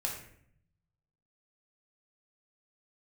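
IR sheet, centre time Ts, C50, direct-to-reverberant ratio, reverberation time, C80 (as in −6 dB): 31 ms, 5.0 dB, −1.0 dB, 0.65 s, 8.5 dB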